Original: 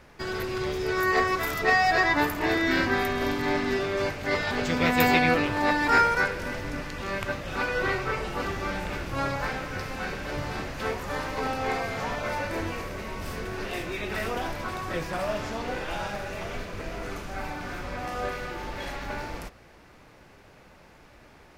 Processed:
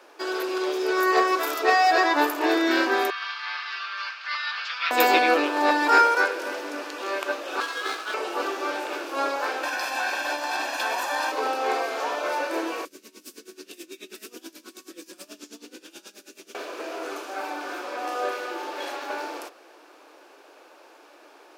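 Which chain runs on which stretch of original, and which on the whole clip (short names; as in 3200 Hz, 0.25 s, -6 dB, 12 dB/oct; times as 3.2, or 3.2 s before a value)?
3.1–4.91 Chebyshev band-pass 1200–4900 Hz, order 3 + comb 4.4 ms, depth 34%
7.6–8.14 elliptic high-pass 1000 Hz + frequency shift +160 Hz + running maximum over 9 samples
9.63–11.32 bell 360 Hz -5 dB 2.4 oct + comb 1.2 ms, depth 75% + fast leveller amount 100%
12.85–16.55 EQ curve 110 Hz 0 dB, 180 Hz +13 dB, 750 Hz -26 dB, 1800 Hz -12 dB, 7000 Hz +4 dB + dB-linear tremolo 9.3 Hz, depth 20 dB
whole clip: elliptic high-pass 310 Hz, stop band 50 dB; bell 2000 Hz -9.5 dB 0.25 oct; gain +4.5 dB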